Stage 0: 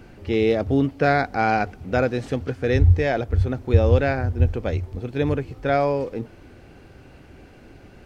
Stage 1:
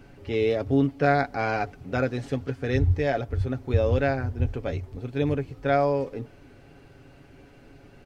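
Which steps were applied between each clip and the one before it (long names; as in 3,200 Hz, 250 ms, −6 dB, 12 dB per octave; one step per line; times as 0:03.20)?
comb filter 7.2 ms, depth 49%
level −5 dB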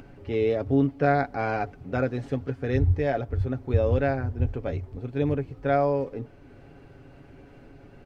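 high-shelf EQ 2,600 Hz −9.5 dB
upward compression, threshold −43 dBFS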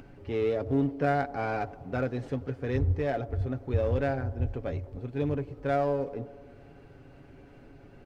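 in parallel at −6.5 dB: gain into a clipping stage and back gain 27 dB
on the sum: delay with a band-pass on its return 98 ms, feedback 69%, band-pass 510 Hz, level −17 dB
level −6 dB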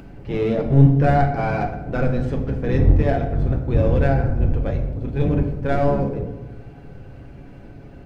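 sub-octave generator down 1 octave, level +2 dB
convolution reverb RT60 0.90 s, pre-delay 6 ms, DRR 4 dB
level +5.5 dB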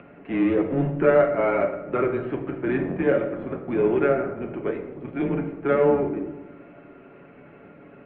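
single-sideband voice off tune −130 Hz 360–2,900 Hz
level +2.5 dB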